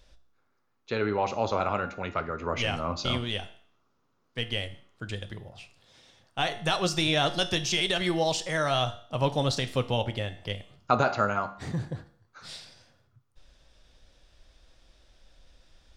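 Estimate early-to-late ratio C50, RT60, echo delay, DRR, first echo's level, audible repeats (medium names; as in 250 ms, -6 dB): 15.0 dB, 0.55 s, no echo, 9.5 dB, no echo, no echo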